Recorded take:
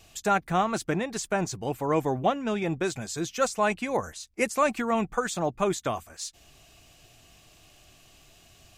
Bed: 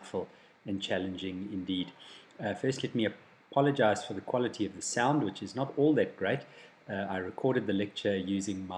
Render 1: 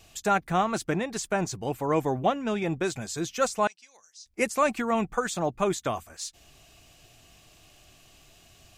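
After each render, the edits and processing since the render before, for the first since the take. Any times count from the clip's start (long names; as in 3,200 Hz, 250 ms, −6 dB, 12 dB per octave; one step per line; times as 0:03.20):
0:03.67–0:04.26: resonant band-pass 5,400 Hz, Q 5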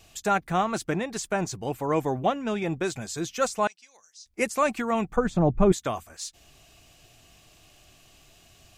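0:05.16–0:05.72: spectral tilt −4.5 dB per octave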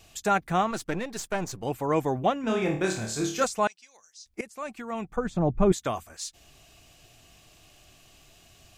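0:00.71–0:01.63: gain on one half-wave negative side −7 dB
0:02.41–0:03.44: flutter between parallel walls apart 4.6 metres, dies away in 0.44 s
0:04.41–0:05.95: fade in linear, from −19.5 dB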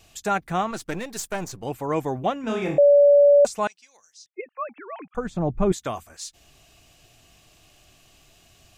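0:00.88–0:01.47: high-shelf EQ 5,100 Hz → 8,800 Hz +9.5 dB
0:02.78–0:03.45: beep over 574 Hz −10.5 dBFS
0:04.26–0:05.15: three sine waves on the formant tracks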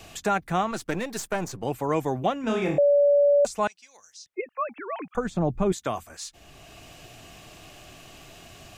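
brickwall limiter −13.5 dBFS, peak gain reduction 3.5 dB
multiband upward and downward compressor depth 40%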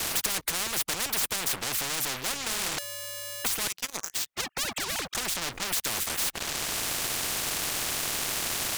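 leveller curve on the samples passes 5
every bin compressed towards the loudest bin 10 to 1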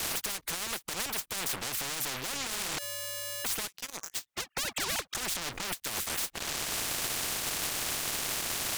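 brickwall limiter −21.5 dBFS, peak gain reduction 9.5 dB
every ending faded ahead of time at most 530 dB per second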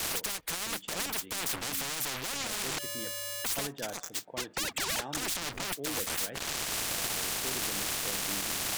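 mix in bed −14 dB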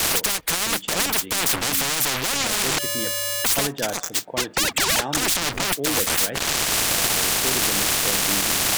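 level +12 dB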